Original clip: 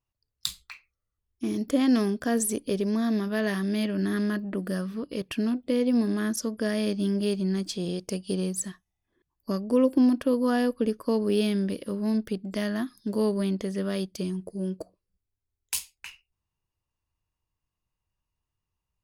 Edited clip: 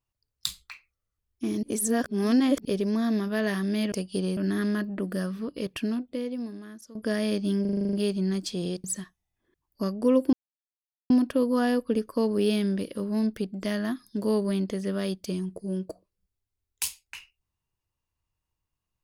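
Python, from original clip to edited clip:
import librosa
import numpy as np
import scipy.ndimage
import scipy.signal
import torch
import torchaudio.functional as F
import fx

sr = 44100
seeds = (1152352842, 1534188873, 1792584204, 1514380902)

y = fx.edit(x, sr, fx.reverse_span(start_s=1.63, length_s=1.02),
    fx.fade_out_to(start_s=5.3, length_s=1.2, curve='qua', floor_db=-18.5),
    fx.stutter(start_s=7.16, slice_s=0.04, count=9),
    fx.move(start_s=8.07, length_s=0.45, to_s=3.92),
    fx.insert_silence(at_s=10.01, length_s=0.77), tone=tone)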